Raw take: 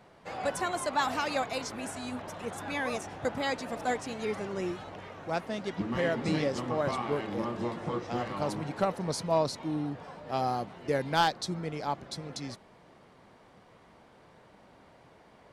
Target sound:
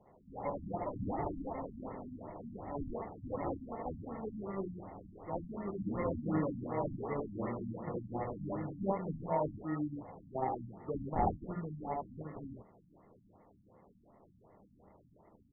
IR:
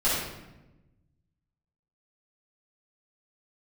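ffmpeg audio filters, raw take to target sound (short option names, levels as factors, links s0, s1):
-af "acrusher=samples=28:mix=1:aa=0.000001,aecho=1:1:26|67|77:0.398|0.501|0.668,afftfilt=real='re*lt(b*sr/1024,270*pow(2200/270,0.5+0.5*sin(2*PI*2.7*pts/sr)))':imag='im*lt(b*sr/1024,270*pow(2200/270,0.5+0.5*sin(2*PI*2.7*pts/sr)))':win_size=1024:overlap=0.75,volume=0.447"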